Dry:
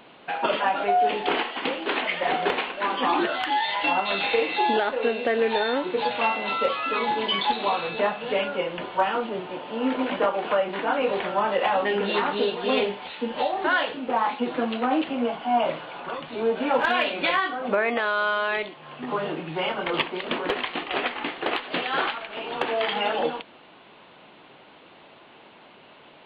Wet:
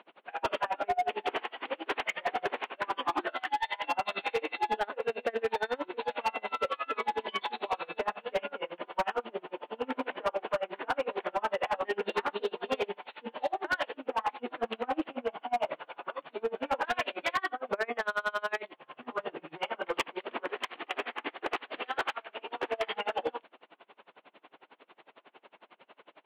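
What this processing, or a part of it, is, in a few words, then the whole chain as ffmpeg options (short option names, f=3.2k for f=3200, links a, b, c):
helicopter radio: -af "highpass=340,lowpass=2.8k,aeval=exprs='val(0)*pow(10,-31*(0.5-0.5*cos(2*PI*11*n/s))/20)':c=same,asoftclip=type=hard:threshold=-23dB"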